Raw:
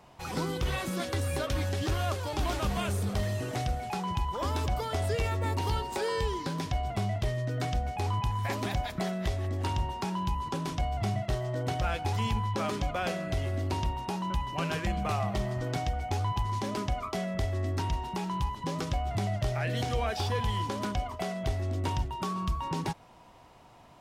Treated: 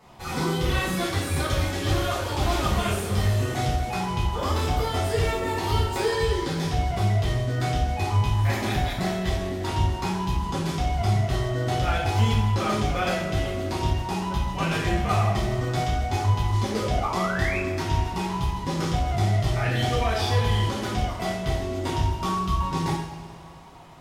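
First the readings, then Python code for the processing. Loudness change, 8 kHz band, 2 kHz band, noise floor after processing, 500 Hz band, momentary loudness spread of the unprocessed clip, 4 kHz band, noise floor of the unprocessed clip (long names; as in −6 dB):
+6.5 dB, +7.0 dB, +8.0 dB, −35 dBFS, +6.5 dB, 3 LU, +7.5 dB, −54 dBFS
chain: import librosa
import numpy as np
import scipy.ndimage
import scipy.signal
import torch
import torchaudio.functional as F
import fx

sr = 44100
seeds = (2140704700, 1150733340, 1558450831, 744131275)

y = fx.spec_paint(x, sr, seeds[0], shape='rise', start_s=16.68, length_s=0.9, low_hz=390.0, high_hz=2700.0, level_db=-37.0)
y = fx.rev_double_slope(y, sr, seeds[1], early_s=0.59, late_s=2.7, knee_db=-15, drr_db=-8.0)
y = y * 10.0 ** (-1.5 / 20.0)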